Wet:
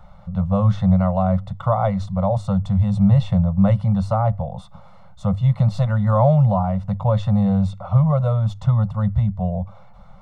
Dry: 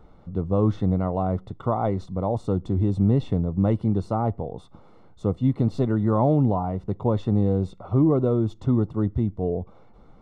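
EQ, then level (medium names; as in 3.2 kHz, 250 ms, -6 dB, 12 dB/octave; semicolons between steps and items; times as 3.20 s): Chebyshev band-stop 200–540 Hz, order 4; hum notches 50/100 Hz; dynamic bell 870 Hz, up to -4 dB, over -39 dBFS, Q 2.2; +8.0 dB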